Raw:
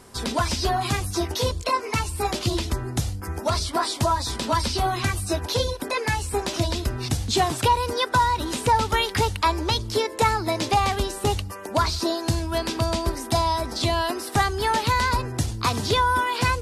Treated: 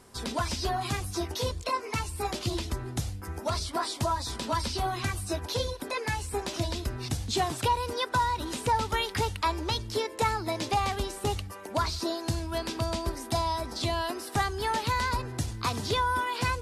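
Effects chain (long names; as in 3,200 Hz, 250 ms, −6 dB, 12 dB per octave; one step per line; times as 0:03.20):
feedback echo with a band-pass in the loop 276 ms, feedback 78%, band-pass 2,100 Hz, level −23.5 dB
level −6.5 dB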